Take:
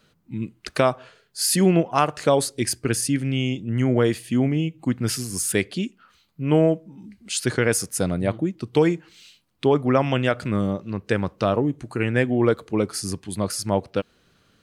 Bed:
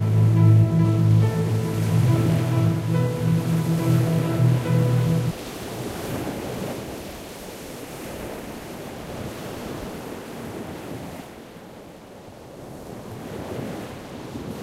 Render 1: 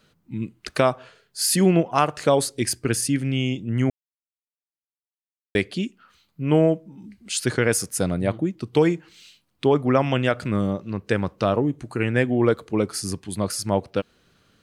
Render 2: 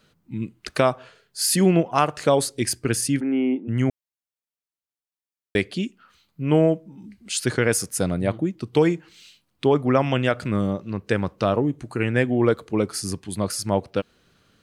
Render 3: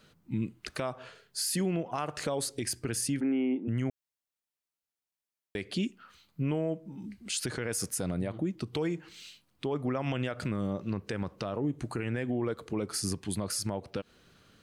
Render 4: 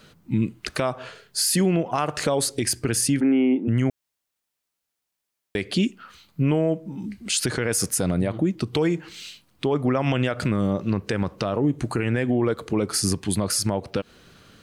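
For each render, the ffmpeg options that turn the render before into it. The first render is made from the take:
-filter_complex "[0:a]asplit=3[s0][s1][s2];[s0]atrim=end=3.9,asetpts=PTS-STARTPTS,afade=t=out:st=3.896:d=0.004:c=hsin[s3];[s1]atrim=start=3.9:end=5.55,asetpts=PTS-STARTPTS,volume=0[s4];[s2]atrim=start=5.55,asetpts=PTS-STARTPTS,afade=t=in:d=0.004:c=hsin[s5];[s3][s4][s5]concat=n=3:v=0:a=1"
-filter_complex "[0:a]asplit=3[s0][s1][s2];[s0]afade=t=out:st=3.19:d=0.02[s3];[s1]highpass=f=260:w=0.5412,highpass=f=260:w=1.3066,equalizer=f=260:t=q:w=4:g=8,equalizer=f=400:t=q:w=4:g=5,equalizer=f=840:t=q:w=4:g=10,equalizer=f=1500:t=q:w=4:g=5,lowpass=f=2000:w=0.5412,lowpass=f=2000:w=1.3066,afade=t=in:st=3.19:d=0.02,afade=t=out:st=3.67:d=0.02[s4];[s2]afade=t=in:st=3.67:d=0.02[s5];[s3][s4][s5]amix=inputs=3:normalize=0"
-af "acompressor=threshold=0.0708:ratio=6,alimiter=limit=0.075:level=0:latency=1:release=77"
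-af "volume=2.99"

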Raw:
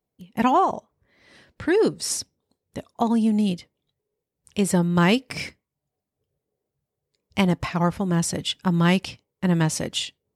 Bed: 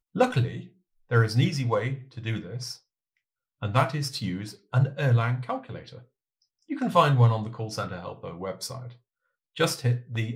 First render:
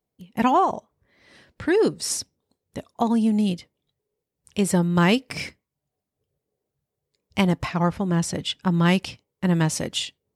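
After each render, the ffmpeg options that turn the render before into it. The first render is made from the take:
-filter_complex "[0:a]asettb=1/sr,asplit=3[s0][s1][s2];[s0]atrim=end=7.714[s3];[s1]atrim=start=7.71:end=8.86,asetpts=PTS-STARTPTS,afade=t=in:d=0.004:c=qsin,afade=t=out:st=1.146:d=0.004:c=qsin,highshelf=f=8200:g=-8[s4];[s2]atrim=start=8.856[s5];[s3][s4]acrossfade=d=0.004:c1=hsin:c2=qsin[s6];[s6][s5]acrossfade=d=0.004:c1=qsin:c2=hsin"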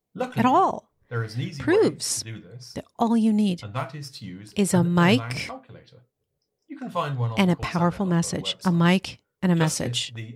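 -filter_complex "[1:a]volume=0.447[s0];[0:a][s0]amix=inputs=2:normalize=0"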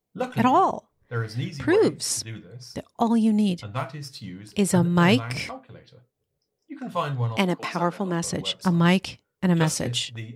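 -filter_complex "[0:a]asettb=1/sr,asplit=3[s0][s1][s2];[s0]atrim=end=7.374[s3];[s1]atrim=start=7.37:end=8.24,asetpts=PTS-STARTPTS,afade=t=in:d=0.004:c=qsin,afade=t=out:st=0.866:d=0.004:c=qsin,highpass=f=200:w=0.5412,highpass=f=200:w=1.3066[s4];[s2]atrim=start=8.236[s5];[s3][s4]acrossfade=d=0.004:c1=hsin:c2=qsin[s6];[s6][s5]acrossfade=d=0.004:c1=qsin:c2=hsin"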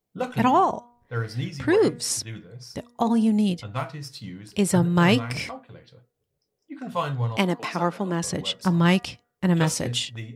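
-af "bandreject=f=239.9:t=h:w=4,bandreject=f=479.8:t=h:w=4,bandreject=f=719.7:t=h:w=4,bandreject=f=959.6:t=h:w=4,bandreject=f=1199.5:t=h:w=4,bandreject=f=1439.4:t=h:w=4,bandreject=f=1679.3:t=h:w=4,bandreject=f=1919.2:t=h:w=4"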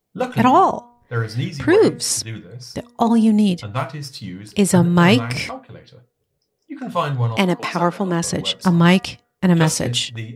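-af "volume=2,alimiter=limit=0.891:level=0:latency=1"

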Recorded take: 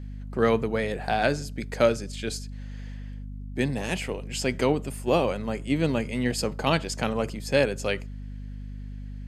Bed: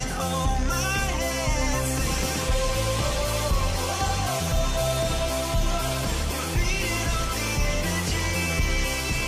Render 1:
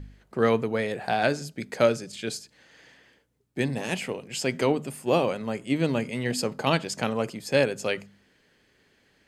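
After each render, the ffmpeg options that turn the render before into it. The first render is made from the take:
-af "bandreject=f=50:t=h:w=4,bandreject=f=100:t=h:w=4,bandreject=f=150:t=h:w=4,bandreject=f=200:t=h:w=4,bandreject=f=250:t=h:w=4"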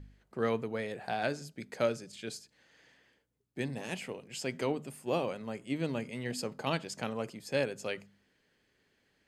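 -af "volume=0.355"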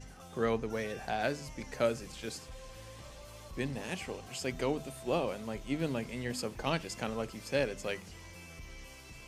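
-filter_complex "[1:a]volume=0.0596[s0];[0:a][s0]amix=inputs=2:normalize=0"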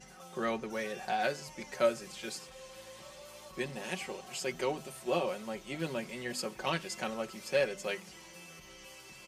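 -af "highpass=f=320:p=1,aecho=1:1:5.4:0.71"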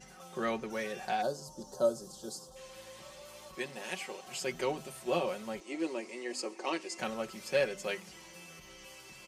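-filter_complex "[0:a]asplit=3[s0][s1][s2];[s0]afade=t=out:st=1.21:d=0.02[s3];[s1]asuperstop=centerf=2200:order=4:qfactor=0.61,afade=t=in:st=1.21:d=0.02,afade=t=out:st=2.55:d=0.02[s4];[s2]afade=t=in:st=2.55:d=0.02[s5];[s3][s4][s5]amix=inputs=3:normalize=0,asettb=1/sr,asplit=3[s6][s7][s8];[s6]atrim=end=3.554[s9];[s7]atrim=start=3.55:end=4.27,asetpts=PTS-STARTPTS,afade=t=in:d=0.004:c=qsin,afade=t=out:st=0.716:d=0.004:c=qsin,highpass=f=370:p=1[s10];[s8]atrim=start=4.266[s11];[s9][s10]acrossfade=d=0.004:c1=hsin:c2=qsin[s12];[s12][s11]acrossfade=d=0.004:c1=qsin:c2=hsin,asettb=1/sr,asplit=3[s13][s14][s15];[s13]atrim=end=5.604[s16];[s14]atrim=start=5.6:end=6.99,asetpts=PTS-STARTPTS,afade=t=in:d=0.004:c=qsin,afade=t=out:st=1.386:d=0.004:c=qsin,highpass=f=290:w=0.5412,highpass=f=290:w=1.3066,equalizer=f=320:t=q:w=4:g=8,equalizer=f=600:t=q:w=4:g=-3,equalizer=f=1500:t=q:w=4:g=-9,equalizer=f=3400:t=q:w=4:g=-9,lowpass=f=9200:w=0.5412,lowpass=f=9200:w=1.3066[s17];[s15]atrim=start=6.986[s18];[s16][s17]acrossfade=d=0.004:c1=hsin:c2=qsin[s19];[s19][s18]acrossfade=d=0.004:c1=qsin:c2=hsin"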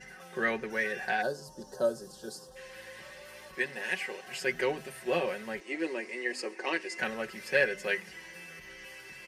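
-af "superequalizer=7b=1.58:11b=3.98:12b=1.78:15b=0.631"

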